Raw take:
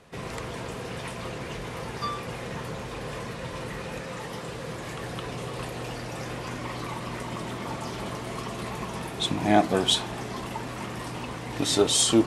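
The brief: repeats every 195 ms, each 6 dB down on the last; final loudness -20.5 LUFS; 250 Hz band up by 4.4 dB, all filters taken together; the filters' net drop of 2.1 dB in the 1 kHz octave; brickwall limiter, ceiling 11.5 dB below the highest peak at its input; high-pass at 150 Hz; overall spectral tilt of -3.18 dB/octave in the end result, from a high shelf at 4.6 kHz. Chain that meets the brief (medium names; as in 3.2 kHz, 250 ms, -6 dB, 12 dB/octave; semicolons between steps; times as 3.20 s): high-pass 150 Hz; peaking EQ 250 Hz +7 dB; peaking EQ 1 kHz -4 dB; treble shelf 4.6 kHz +9 dB; peak limiter -15.5 dBFS; feedback delay 195 ms, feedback 50%, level -6 dB; trim +9 dB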